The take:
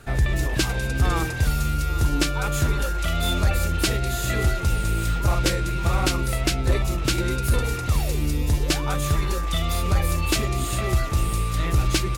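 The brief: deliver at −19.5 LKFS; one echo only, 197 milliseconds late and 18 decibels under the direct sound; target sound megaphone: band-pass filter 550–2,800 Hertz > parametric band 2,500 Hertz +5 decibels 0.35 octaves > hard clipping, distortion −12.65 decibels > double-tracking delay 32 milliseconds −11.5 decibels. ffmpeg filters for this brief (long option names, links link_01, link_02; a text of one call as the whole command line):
ffmpeg -i in.wav -filter_complex "[0:a]highpass=550,lowpass=2800,equalizer=frequency=2500:width_type=o:width=0.35:gain=5,aecho=1:1:197:0.126,asoftclip=type=hard:threshold=-26.5dB,asplit=2[link_01][link_02];[link_02]adelay=32,volume=-11.5dB[link_03];[link_01][link_03]amix=inputs=2:normalize=0,volume=11.5dB" out.wav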